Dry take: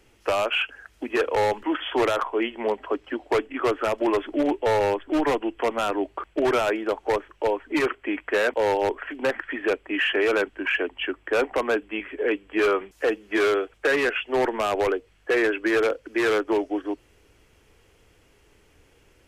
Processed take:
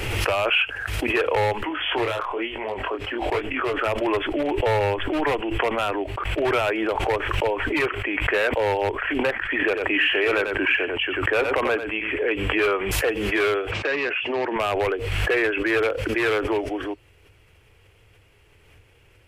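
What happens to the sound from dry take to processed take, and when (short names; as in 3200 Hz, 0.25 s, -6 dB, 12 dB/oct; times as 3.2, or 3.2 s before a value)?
1.69–3.86 chorus 1.1 Hz, delay 19 ms, depth 7.8 ms
9.5–12.3 echo 91 ms -10 dB
13.71–14.56 speaker cabinet 180–5700 Hz, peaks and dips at 250 Hz +3 dB, 460 Hz -5 dB, 760 Hz -4 dB, 1400 Hz -6 dB, 2000 Hz -4 dB, 3300 Hz -6 dB
whole clip: fifteen-band EQ 100 Hz +10 dB, 250 Hz -7 dB, 2500 Hz +5 dB, 6300 Hz -6 dB; backwards sustainer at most 29 dB/s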